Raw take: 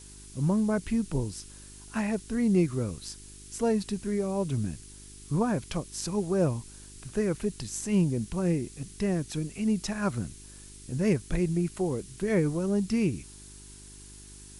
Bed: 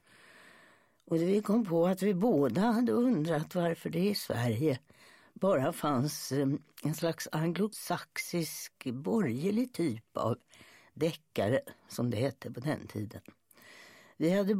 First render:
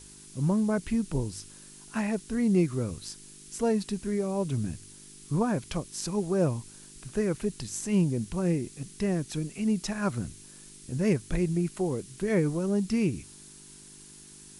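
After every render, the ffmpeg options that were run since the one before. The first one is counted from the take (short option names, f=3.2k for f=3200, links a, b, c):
-af "bandreject=f=50:t=h:w=4,bandreject=f=100:t=h:w=4"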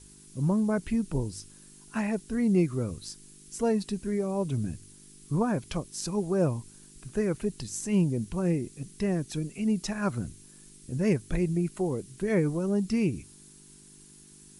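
-af "afftdn=nr=6:nf=-50"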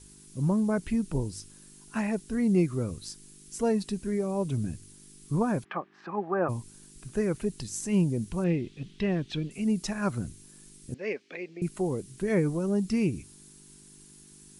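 -filter_complex "[0:a]asplit=3[a][b][c];[a]afade=t=out:st=5.63:d=0.02[d];[b]highpass=f=220:w=0.5412,highpass=f=220:w=1.3066,equalizer=f=260:t=q:w=4:g=-9,equalizer=f=470:t=q:w=4:g=-5,equalizer=f=790:t=q:w=4:g=9,equalizer=f=1.2k:t=q:w=4:g=10,equalizer=f=1.7k:t=q:w=4:g=10,lowpass=f=2.5k:w=0.5412,lowpass=f=2.5k:w=1.3066,afade=t=in:st=5.63:d=0.02,afade=t=out:st=6.48:d=0.02[e];[c]afade=t=in:st=6.48:d=0.02[f];[d][e][f]amix=inputs=3:normalize=0,asettb=1/sr,asplit=3[g][h][i];[g]atrim=end=8.444[j];[h]atrim=start=8.44:end=9.51,asetpts=PTS-STARTPTS,afade=t=in:d=0.004:c=qsin,afade=t=out:st=1.066:d=0.004:c=qsin,lowpass=f=3.3k:t=q:w=2.9[k];[i]atrim=start=9.506[l];[j][k]acrossfade=d=0.004:c1=hsin:c2=qsin[m];[m][l]acrossfade=d=0.004:c1=qsin:c2=hsin,asettb=1/sr,asplit=3[n][o][p];[n]atrim=end=10.944[q];[o]atrim=start=10.94:end=11.62,asetpts=PTS-STARTPTS,afade=t=in:d=0.004:c=qsin,afade=t=out:st=0.676:d=0.004:c=qsin,highpass=f=340:w=0.5412,highpass=f=340:w=1.3066,equalizer=f=340:t=q:w=4:g=-8,equalizer=f=650:t=q:w=4:g=-5,equalizer=f=950:t=q:w=4:g=-9,equalizer=f=1.4k:t=q:w=4:g=-6,equalizer=f=2.3k:t=q:w=4:g=5,equalizer=f=3.7k:t=q:w=4:g=-4,lowpass=f=4.3k:w=0.5412,lowpass=f=4.3k:w=1.3066[r];[p]atrim=start=11.616[s];[q][r]acrossfade=d=0.004:c1=hsin:c2=qsin[t];[t][s]acrossfade=d=0.004:c1=qsin:c2=hsin"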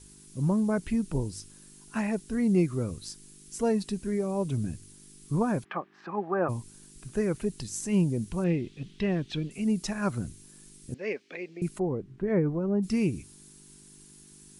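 -filter_complex "[0:a]asplit=3[a][b][c];[a]afade=t=out:st=11.78:d=0.02[d];[b]lowpass=1.5k,afade=t=in:st=11.78:d=0.02,afade=t=out:st=12.82:d=0.02[e];[c]afade=t=in:st=12.82:d=0.02[f];[d][e][f]amix=inputs=3:normalize=0"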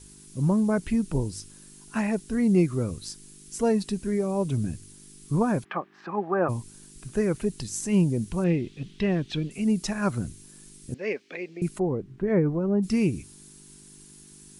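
-af "volume=3dB"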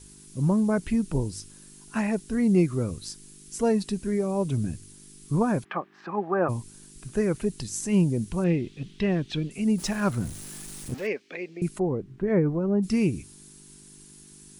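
-filter_complex "[0:a]asettb=1/sr,asplit=3[a][b][c];[a]atrim=end=9.784[d];[b]atrim=start=9.78:end=11.07,asetpts=PTS-STARTPTS,afade=t=in:d=0.004:c=qsin,afade=t=out:st=1.286:d=0.004:c=qsin,aeval=exprs='val(0)+0.5*0.0133*sgn(val(0))':c=same[e];[c]atrim=start=11.066[f];[d][e]acrossfade=d=0.004:c1=hsin:c2=qsin[g];[g][f]acrossfade=d=0.004:c1=qsin:c2=hsin"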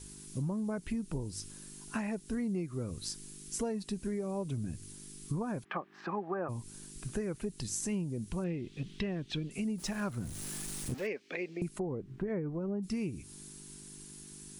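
-af "acompressor=threshold=-33dB:ratio=6"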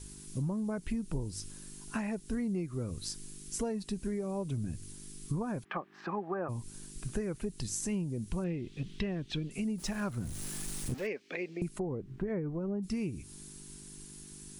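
-af "lowshelf=f=64:g=7"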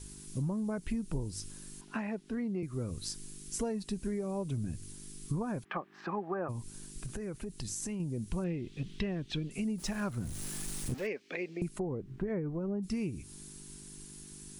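-filter_complex "[0:a]asettb=1/sr,asplit=3[a][b][c];[a]atrim=end=1.814[d];[b]atrim=start=1.81:end=2.63,asetpts=PTS-STARTPTS,afade=t=in:d=0.004:c=qsin,afade=t=out:st=0.816:d=0.004:c=qsin,acrossover=split=160 4300:gain=0.2 1 0.178[e][f][g];[e][f][g]amix=inputs=3:normalize=0[h];[c]atrim=start=2.626[i];[d][h]acrossfade=d=0.004:c1=hsin:c2=qsin[j];[j][i]acrossfade=d=0.004:c1=qsin:c2=hsin,asettb=1/sr,asplit=3[k][l][m];[k]atrim=end=6.514[n];[l]atrim=start=6.51:end=8,asetpts=PTS-STARTPTS,afade=t=in:d=0.004:c=qsin,afade=t=out:st=1.486:d=0.004:c=qsin,acompressor=threshold=-34dB:ratio=6:attack=3.2:release=140:knee=1:detection=peak[o];[m]atrim=start=7.996[p];[n][o]acrossfade=d=0.004:c1=hsin:c2=qsin[q];[q][p]acrossfade=d=0.004:c1=qsin:c2=hsin"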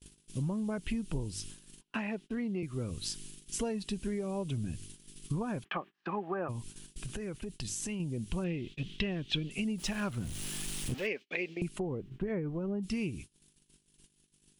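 -af "agate=range=-31dB:threshold=-45dB:ratio=16:detection=peak,equalizer=f=3k:w=1.8:g=10.5"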